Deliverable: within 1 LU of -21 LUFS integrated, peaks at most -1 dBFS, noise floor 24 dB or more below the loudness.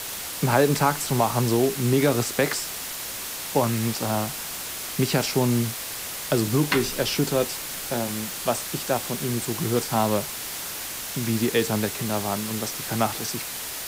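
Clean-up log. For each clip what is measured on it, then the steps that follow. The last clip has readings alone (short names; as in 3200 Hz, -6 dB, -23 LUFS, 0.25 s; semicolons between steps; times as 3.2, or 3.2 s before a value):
noise floor -34 dBFS; noise floor target -49 dBFS; loudness -25.0 LUFS; peak -6.5 dBFS; loudness target -21.0 LUFS
-> denoiser 15 dB, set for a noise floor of -34 dBFS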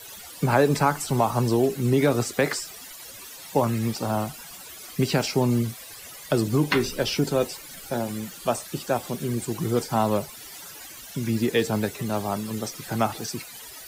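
noise floor -42 dBFS; noise floor target -50 dBFS
-> denoiser 8 dB, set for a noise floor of -42 dBFS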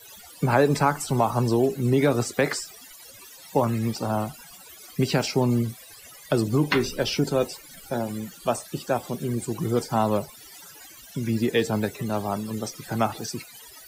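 noise floor -47 dBFS; noise floor target -50 dBFS
-> denoiser 6 dB, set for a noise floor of -47 dBFS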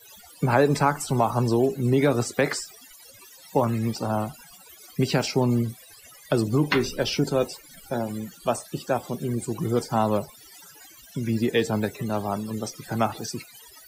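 noise floor -50 dBFS; loudness -25.5 LUFS; peak -7.0 dBFS; loudness target -21.0 LUFS
-> gain +4.5 dB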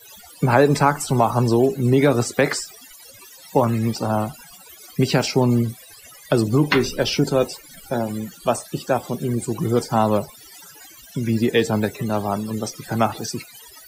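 loudness -21.0 LUFS; peak -2.5 dBFS; noise floor -45 dBFS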